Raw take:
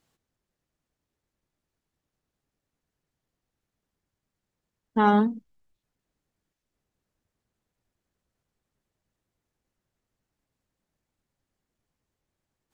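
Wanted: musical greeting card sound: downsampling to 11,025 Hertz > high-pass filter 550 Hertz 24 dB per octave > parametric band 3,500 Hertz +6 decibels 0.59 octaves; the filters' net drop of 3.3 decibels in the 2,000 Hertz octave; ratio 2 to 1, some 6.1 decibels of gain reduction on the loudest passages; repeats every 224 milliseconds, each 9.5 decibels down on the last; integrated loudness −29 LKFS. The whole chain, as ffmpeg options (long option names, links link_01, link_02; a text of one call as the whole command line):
ffmpeg -i in.wav -af "equalizer=frequency=2000:width_type=o:gain=-6,acompressor=threshold=-28dB:ratio=2,aecho=1:1:224|448|672|896:0.335|0.111|0.0365|0.012,aresample=11025,aresample=44100,highpass=frequency=550:width=0.5412,highpass=frequency=550:width=1.3066,equalizer=frequency=3500:width_type=o:width=0.59:gain=6,volume=5.5dB" out.wav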